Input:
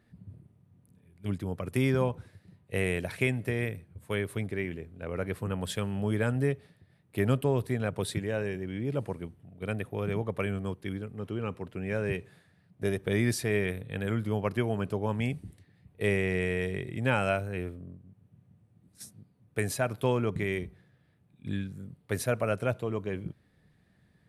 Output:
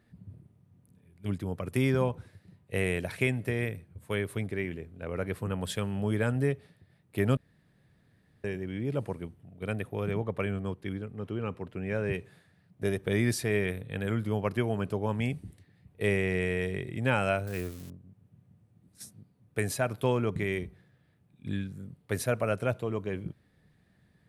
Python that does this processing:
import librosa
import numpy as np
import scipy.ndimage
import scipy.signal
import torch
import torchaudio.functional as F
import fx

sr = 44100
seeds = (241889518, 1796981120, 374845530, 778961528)

y = fx.high_shelf(x, sr, hz=5800.0, db=-7.0, at=(10.11, 12.14))
y = fx.crossing_spikes(y, sr, level_db=-33.0, at=(17.47, 17.9))
y = fx.edit(y, sr, fx.room_tone_fill(start_s=7.37, length_s=1.07), tone=tone)